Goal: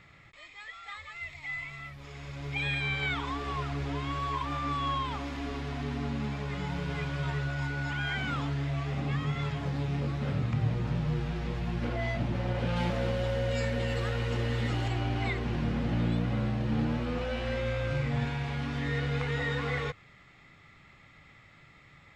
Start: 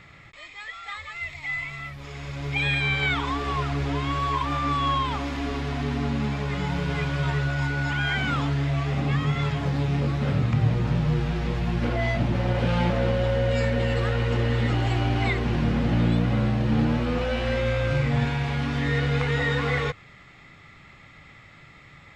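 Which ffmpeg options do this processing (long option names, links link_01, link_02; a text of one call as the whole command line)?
ffmpeg -i in.wav -filter_complex "[0:a]asettb=1/sr,asplit=3[link_01][link_02][link_03];[link_01]atrim=end=12.764[link_04];[link_02]atrim=start=12.76:end=14.88,asetpts=PTS-STARTPTS,afade=type=in:duration=0.004:curve=qsin,afade=type=out:start_time=2.116:duration=0.004:curve=qsin,highshelf=frequency=4600:gain=8[link_05];[link_03]atrim=start=14.876[link_06];[link_04][link_05]acrossfade=duration=0.004:curve1=hsin:curve2=qsin[link_07];[link_07][link_06]acrossfade=duration=0.004:curve1=qsin:curve2=hsin,volume=-7dB" out.wav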